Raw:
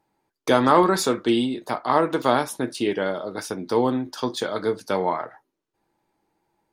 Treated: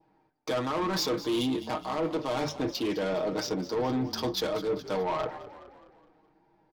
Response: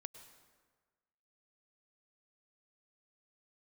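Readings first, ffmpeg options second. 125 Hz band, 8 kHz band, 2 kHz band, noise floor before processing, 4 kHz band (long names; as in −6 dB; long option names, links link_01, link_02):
−4.5 dB, −7.0 dB, −9.0 dB, −81 dBFS, −2.5 dB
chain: -filter_complex "[0:a]highshelf=frequency=7200:width_type=q:width=3:gain=-10,bandreject=frequency=50:width_type=h:width=6,bandreject=frequency=100:width_type=h:width=6,bandreject=frequency=150:width_type=h:width=6,adynamicsmooth=sensitivity=4.5:basefreq=2300,aecho=1:1:6.4:0.59,areverse,acompressor=threshold=-28dB:ratio=6,areverse,asoftclip=type=tanh:threshold=-29dB,asplit=6[link_01][link_02][link_03][link_04][link_05][link_06];[link_02]adelay=209,afreqshift=-33,volume=-14.5dB[link_07];[link_03]adelay=418,afreqshift=-66,volume=-20.7dB[link_08];[link_04]adelay=627,afreqshift=-99,volume=-26.9dB[link_09];[link_05]adelay=836,afreqshift=-132,volume=-33.1dB[link_10];[link_06]adelay=1045,afreqshift=-165,volume=-39.3dB[link_11];[link_01][link_07][link_08][link_09][link_10][link_11]amix=inputs=6:normalize=0,adynamicequalizer=threshold=0.002:dfrequency=1500:dqfactor=1.8:tfrequency=1500:tqfactor=1.8:attack=5:release=100:ratio=0.375:range=3:mode=cutabove:tftype=bell,volume=5.5dB"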